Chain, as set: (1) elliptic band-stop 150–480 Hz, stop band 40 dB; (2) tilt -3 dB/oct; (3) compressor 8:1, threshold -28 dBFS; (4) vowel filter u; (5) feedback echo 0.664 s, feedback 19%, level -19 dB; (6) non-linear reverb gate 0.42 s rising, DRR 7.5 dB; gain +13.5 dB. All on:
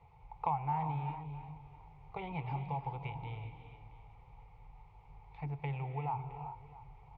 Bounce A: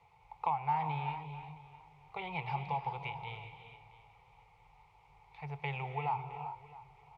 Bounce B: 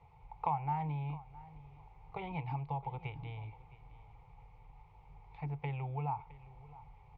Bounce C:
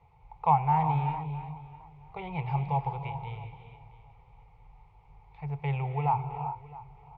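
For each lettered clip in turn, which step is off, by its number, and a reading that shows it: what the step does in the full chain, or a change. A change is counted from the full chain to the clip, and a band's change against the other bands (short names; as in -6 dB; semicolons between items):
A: 2, 2 kHz band +8.5 dB; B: 6, momentary loudness spread change -1 LU; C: 3, mean gain reduction 3.0 dB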